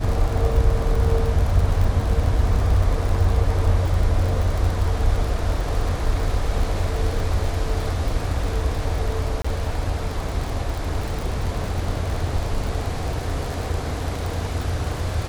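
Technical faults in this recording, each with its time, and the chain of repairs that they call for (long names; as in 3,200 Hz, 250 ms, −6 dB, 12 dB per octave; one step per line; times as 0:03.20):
surface crackle 50 per second −25 dBFS
0:09.42–0:09.45: drop-out 25 ms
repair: click removal
repair the gap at 0:09.42, 25 ms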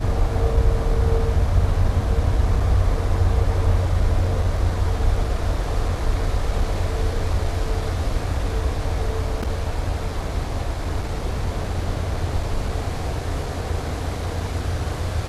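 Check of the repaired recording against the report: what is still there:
none of them is left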